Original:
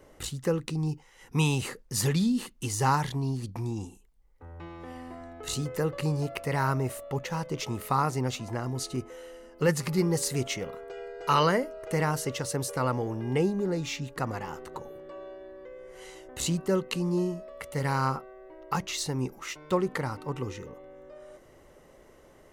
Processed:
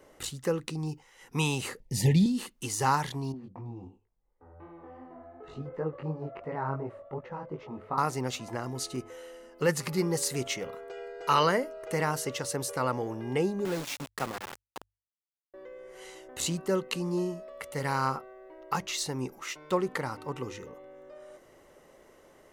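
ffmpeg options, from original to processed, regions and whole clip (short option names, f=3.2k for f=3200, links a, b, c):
-filter_complex "[0:a]asettb=1/sr,asplit=3[a][b][c];[a]atrim=end=1.804[d];[b]atrim=start=1.8:end=2.26,asetpts=PTS-STARTPTS,afade=t=in:d=0.004:c=qsin,afade=t=out:st=0.456:d=0.004:c=qsin,asuperstop=centerf=1300:order=20:qfactor=1.6,bass=f=250:g=11,treble=f=4k:g=-5[e];[c]atrim=start=2.256[f];[d][e]acrossfade=d=0.004:c1=hsin:c2=qsin[g];[g][f]acrossfade=d=0.004:c1=qsin:c2=hsin,asettb=1/sr,asplit=3[h][i][j];[h]atrim=end=3.324[k];[i]atrim=start=3.32:end=7.98,asetpts=PTS-STARTPTS,afade=t=in:d=0.004:c=qsin,afade=t=out:st=4.656:d=0.004:c=qsin,lowpass=1.2k,flanger=delay=18:depth=4.2:speed=2.8[l];[j]atrim=start=7.976[m];[k][l]acrossfade=d=0.004:c1=hsin:c2=qsin[n];[n][m]acrossfade=d=0.004:c1=qsin:c2=hsin,asettb=1/sr,asplit=3[o][p][q];[o]atrim=end=13.654[r];[p]atrim=start=13.65:end=15.54,asetpts=PTS-STARTPTS,afade=t=in:d=0.004:c=qsin,afade=t=out:st=1.886:d=0.004:c=qsin,highpass=f=99:w=0.5412,highpass=f=99:w=1.3066,bandreject=f=980:w=17,aeval=exprs='val(0)*gte(abs(val(0)),0.0237)':c=same[s];[q]atrim=start=15.536[t];[r][s]acrossfade=d=0.004:c1=hsin:c2=qsin[u];[u][t]acrossfade=d=0.004:c1=qsin:c2=hsin,lowshelf=f=170:g=-9,bandreject=f=50:t=h:w=6,bandreject=f=100:t=h:w=6"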